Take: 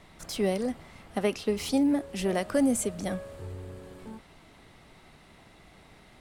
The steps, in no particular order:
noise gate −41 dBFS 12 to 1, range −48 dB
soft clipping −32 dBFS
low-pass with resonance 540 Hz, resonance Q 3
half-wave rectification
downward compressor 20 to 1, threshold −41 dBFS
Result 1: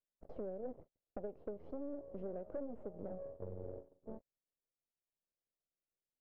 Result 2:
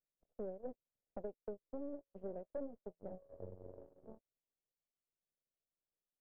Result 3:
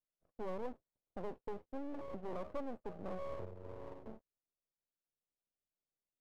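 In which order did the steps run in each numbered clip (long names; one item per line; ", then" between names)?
noise gate, then half-wave rectification, then downward compressor, then low-pass with resonance, then soft clipping
half-wave rectification, then downward compressor, then low-pass with resonance, then noise gate, then soft clipping
soft clipping, then downward compressor, then low-pass with resonance, then noise gate, then half-wave rectification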